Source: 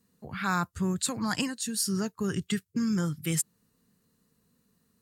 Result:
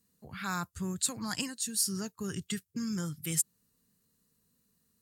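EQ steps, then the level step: bass shelf 100 Hz +5.5 dB; treble shelf 3.6 kHz +10 dB; -8.0 dB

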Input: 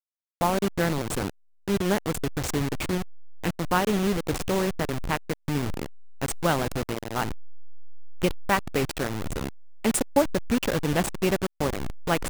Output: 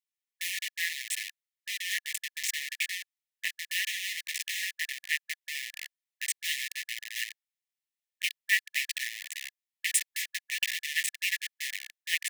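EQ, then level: brick-wall FIR high-pass 1.7 kHz; treble shelf 2.8 kHz -7 dB; band-stop 4.6 kHz, Q 22; +7.5 dB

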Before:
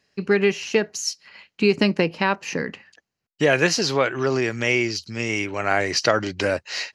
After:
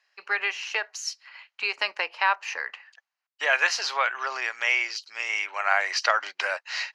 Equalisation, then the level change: high-pass 840 Hz 24 dB/octave; low-pass 2.3 kHz 6 dB/octave; +2.5 dB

